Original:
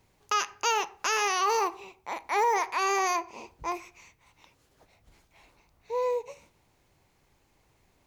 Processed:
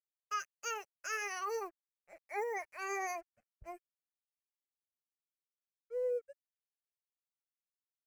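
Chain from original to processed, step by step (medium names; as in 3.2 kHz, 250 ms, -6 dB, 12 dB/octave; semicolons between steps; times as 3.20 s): expander on every frequency bin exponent 2; crossover distortion -54 dBFS; static phaser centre 980 Hz, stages 6; trim -4 dB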